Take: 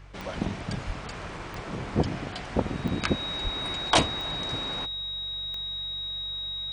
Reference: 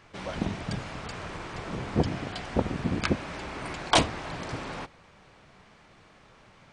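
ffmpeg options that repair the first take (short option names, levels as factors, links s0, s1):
-filter_complex "[0:a]adeclick=t=4,bandreject=f=47.1:t=h:w=4,bandreject=f=94.2:t=h:w=4,bandreject=f=141.3:t=h:w=4,bandreject=f=3800:w=30,asplit=3[s0][s1][s2];[s0]afade=t=out:st=0.86:d=0.02[s3];[s1]highpass=f=140:w=0.5412,highpass=f=140:w=1.3066,afade=t=in:st=0.86:d=0.02,afade=t=out:st=0.98:d=0.02[s4];[s2]afade=t=in:st=0.98:d=0.02[s5];[s3][s4][s5]amix=inputs=3:normalize=0,asplit=3[s6][s7][s8];[s6]afade=t=out:st=3.43:d=0.02[s9];[s7]highpass=f=140:w=0.5412,highpass=f=140:w=1.3066,afade=t=in:st=3.43:d=0.02,afade=t=out:st=3.55:d=0.02[s10];[s8]afade=t=in:st=3.55:d=0.02[s11];[s9][s10][s11]amix=inputs=3:normalize=0"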